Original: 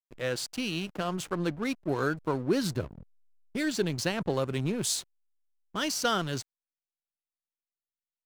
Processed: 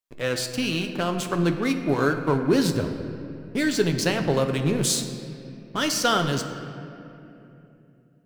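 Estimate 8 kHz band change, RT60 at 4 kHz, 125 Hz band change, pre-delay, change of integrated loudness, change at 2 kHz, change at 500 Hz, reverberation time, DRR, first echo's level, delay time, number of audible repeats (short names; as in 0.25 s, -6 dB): +6.0 dB, 1.8 s, +8.0 dB, 7 ms, +6.5 dB, +6.5 dB, +7.0 dB, 3.0 s, 5.5 dB, none, none, none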